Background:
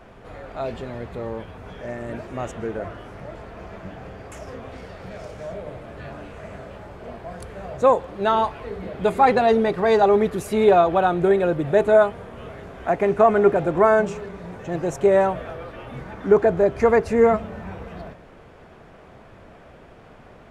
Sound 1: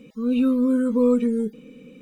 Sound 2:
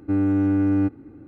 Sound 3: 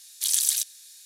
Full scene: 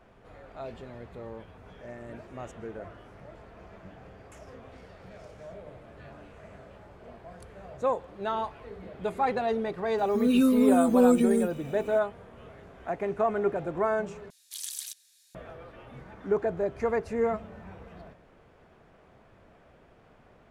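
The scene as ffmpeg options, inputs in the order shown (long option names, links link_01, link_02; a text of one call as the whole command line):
ffmpeg -i bed.wav -i cue0.wav -i cue1.wav -i cue2.wav -filter_complex "[0:a]volume=-11dB[link_01];[1:a]crystalizer=i=3.5:c=0[link_02];[3:a]bass=frequency=250:gain=-8,treble=frequency=4000:gain=-5[link_03];[link_01]asplit=2[link_04][link_05];[link_04]atrim=end=14.304[link_06];[link_03]atrim=end=1.05,asetpts=PTS-STARTPTS,volume=-10dB[link_07];[link_05]atrim=start=15.346[link_08];[link_02]atrim=end=2.01,asetpts=PTS-STARTPTS,volume=-2dB,afade=type=in:duration=0.004:curve=hsin,afade=type=out:start_time=2.006:duration=0.004:curve=hsin,adelay=9980[link_09];[link_06][link_07]acrossfade=duration=0.004:curve1=hsin:curve2=hsin[link_10];[link_10][link_08]acrossfade=duration=0.004:curve1=hsin:curve2=hsin[link_11];[link_11][link_09]amix=inputs=2:normalize=0" out.wav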